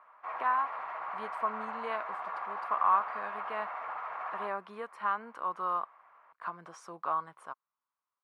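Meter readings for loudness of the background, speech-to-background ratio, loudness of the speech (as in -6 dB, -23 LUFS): -39.0 LUFS, 4.0 dB, -35.0 LUFS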